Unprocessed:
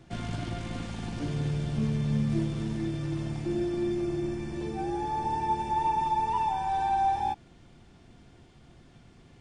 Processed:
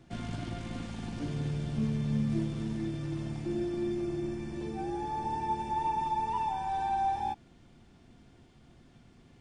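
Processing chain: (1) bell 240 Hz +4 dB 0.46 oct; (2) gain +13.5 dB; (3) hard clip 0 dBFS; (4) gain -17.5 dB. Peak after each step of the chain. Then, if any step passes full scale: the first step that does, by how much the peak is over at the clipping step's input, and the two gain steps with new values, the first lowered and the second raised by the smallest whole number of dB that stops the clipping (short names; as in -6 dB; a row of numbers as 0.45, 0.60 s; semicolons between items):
-16.5, -3.0, -3.0, -20.5 dBFS; no overload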